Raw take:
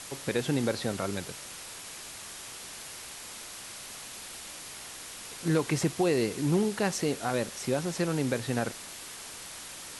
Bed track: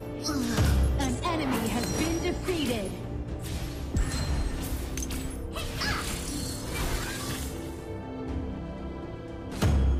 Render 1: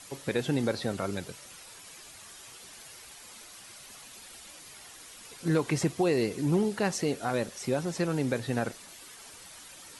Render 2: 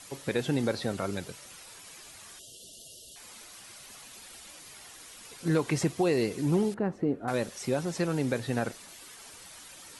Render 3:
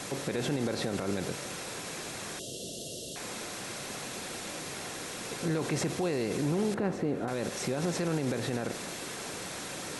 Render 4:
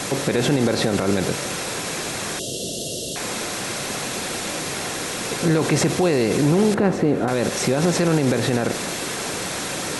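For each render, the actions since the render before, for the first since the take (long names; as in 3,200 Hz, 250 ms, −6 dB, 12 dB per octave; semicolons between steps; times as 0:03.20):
broadband denoise 9 dB, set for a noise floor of −44 dBFS
0:02.39–0:03.16: linear-phase brick-wall band-stop 700–2,700 Hz; 0:06.74–0:07.28: drawn EQ curve 180 Hz 0 dB, 300 Hz +4 dB, 450 Hz −2 dB, 920 Hz −6 dB, 1,400 Hz −7 dB, 5,600 Hz −30 dB
compressor on every frequency bin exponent 0.6; brickwall limiter −21.5 dBFS, peak gain reduction 10.5 dB
level +12 dB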